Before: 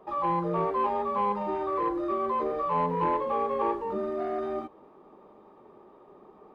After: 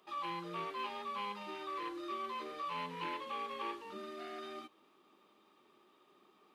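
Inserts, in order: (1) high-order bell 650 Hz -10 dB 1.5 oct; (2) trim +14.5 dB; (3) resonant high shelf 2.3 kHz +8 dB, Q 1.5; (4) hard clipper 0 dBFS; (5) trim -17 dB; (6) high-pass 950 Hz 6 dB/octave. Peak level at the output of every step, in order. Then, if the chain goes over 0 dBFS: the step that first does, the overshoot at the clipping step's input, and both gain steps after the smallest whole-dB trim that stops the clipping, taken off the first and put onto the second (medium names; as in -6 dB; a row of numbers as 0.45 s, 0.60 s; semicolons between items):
-20.5 dBFS, -6.0 dBFS, -6.0 dBFS, -6.0 dBFS, -23.0 dBFS, -28.5 dBFS; nothing clips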